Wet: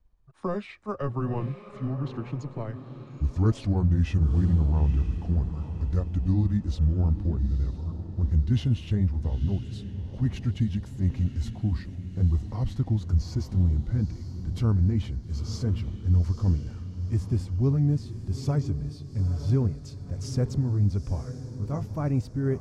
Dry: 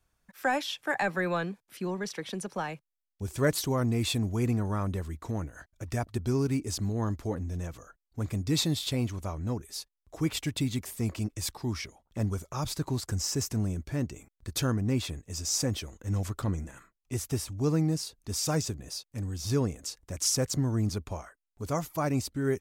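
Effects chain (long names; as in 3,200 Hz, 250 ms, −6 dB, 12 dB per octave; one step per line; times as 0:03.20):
pitch glide at a constant tempo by −6.5 semitones ending unshifted
RIAA equalisation playback
feedback delay with all-pass diffusion 902 ms, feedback 45%, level −10.5 dB
level −4.5 dB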